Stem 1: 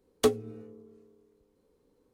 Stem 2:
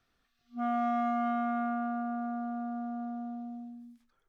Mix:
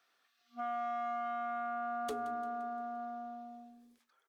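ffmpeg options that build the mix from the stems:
ffmpeg -i stem1.wav -i stem2.wav -filter_complex "[0:a]equalizer=frequency=110:width_type=o:width=0.77:gain=-13,adelay=1850,volume=-10.5dB,asplit=2[link_01][link_02];[link_02]volume=-21.5dB[link_03];[1:a]highpass=580,volume=3dB[link_04];[link_03]aecho=0:1:173|346|519|692|865|1038|1211:1|0.5|0.25|0.125|0.0625|0.0312|0.0156[link_05];[link_01][link_04][link_05]amix=inputs=3:normalize=0,alimiter=level_in=6dB:limit=-24dB:level=0:latency=1,volume=-6dB" out.wav

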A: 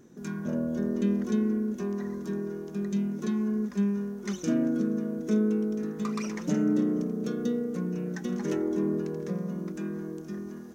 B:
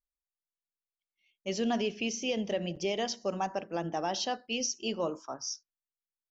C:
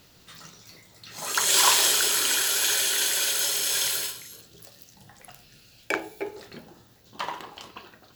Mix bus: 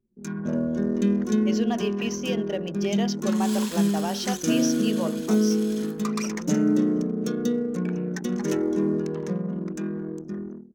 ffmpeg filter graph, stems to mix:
ffmpeg -i stem1.wav -i stem2.wav -i stem3.wav -filter_complex "[0:a]highshelf=frequency=6000:gain=11,dynaudnorm=framelen=110:gausssize=5:maxgain=5.5dB,volume=-1.5dB[link_01];[1:a]volume=1.5dB[link_02];[2:a]adelay=1950,volume=-17.5dB[link_03];[link_01][link_02][link_03]amix=inputs=3:normalize=0,anlmdn=2.51" out.wav

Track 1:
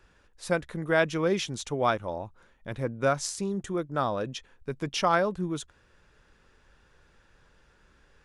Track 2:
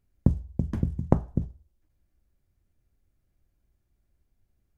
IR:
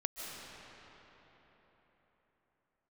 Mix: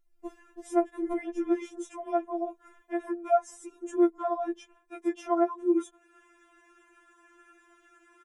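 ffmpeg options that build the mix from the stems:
-filter_complex "[0:a]highpass=60,aecho=1:1:2.8:0.96,adelay=250,volume=2.5dB[link_01];[1:a]volume=0.5dB[link_02];[link_01][link_02]amix=inputs=2:normalize=0,acrossover=split=240|960[link_03][link_04][link_05];[link_03]acompressor=threshold=-39dB:ratio=4[link_06];[link_04]acompressor=threshold=-27dB:ratio=4[link_07];[link_05]acompressor=threshold=-47dB:ratio=4[link_08];[link_06][link_07][link_08]amix=inputs=3:normalize=0,afftfilt=real='re*4*eq(mod(b,16),0)':imag='im*4*eq(mod(b,16),0)':win_size=2048:overlap=0.75"

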